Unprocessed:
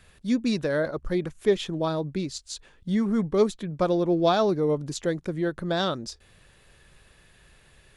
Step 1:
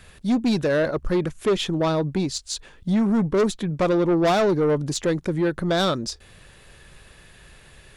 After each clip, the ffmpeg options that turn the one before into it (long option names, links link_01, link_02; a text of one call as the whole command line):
ffmpeg -i in.wav -af "asoftclip=type=tanh:threshold=-23dB,volume=7.5dB" out.wav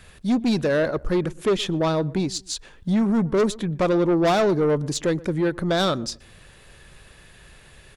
ffmpeg -i in.wav -filter_complex "[0:a]asplit=2[link_01][link_02];[link_02]adelay=121,lowpass=frequency=1200:poles=1,volume=-20.5dB,asplit=2[link_03][link_04];[link_04]adelay=121,lowpass=frequency=1200:poles=1,volume=0.3[link_05];[link_01][link_03][link_05]amix=inputs=3:normalize=0" out.wav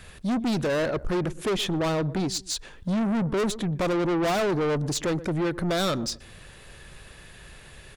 ffmpeg -i in.wav -af "asoftclip=type=tanh:threshold=-24.5dB,volume=2dB" out.wav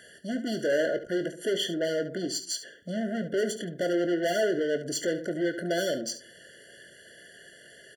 ffmpeg -i in.wav -filter_complex "[0:a]highpass=330,asplit=2[link_01][link_02];[link_02]aecho=0:1:23|71:0.299|0.251[link_03];[link_01][link_03]amix=inputs=2:normalize=0,afftfilt=real='re*eq(mod(floor(b*sr/1024/690),2),0)':imag='im*eq(mod(floor(b*sr/1024/690),2),0)':win_size=1024:overlap=0.75" out.wav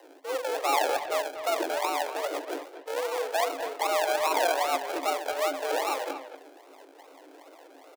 ffmpeg -i in.wav -filter_complex "[0:a]acrusher=samples=41:mix=1:aa=0.000001:lfo=1:lforange=24.6:lforate=2.5,afreqshift=270,asplit=2[link_01][link_02];[link_02]adelay=240,highpass=300,lowpass=3400,asoftclip=type=hard:threshold=-20.5dB,volume=-10dB[link_03];[link_01][link_03]amix=inputs=2:normalize=0" out.wav